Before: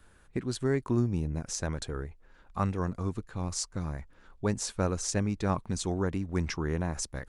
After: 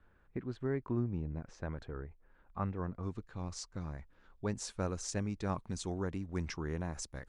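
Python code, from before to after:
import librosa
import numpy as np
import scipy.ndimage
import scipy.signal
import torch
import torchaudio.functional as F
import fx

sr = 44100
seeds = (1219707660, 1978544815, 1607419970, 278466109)

y = fx.lowpass(x, sr, hz=fx.steps((0.0, 2100.0), (3.03, 5600.0), (4.54, 9100.0)), slope=12)
y = y * 10.0 ** (-7.0 / 20.0)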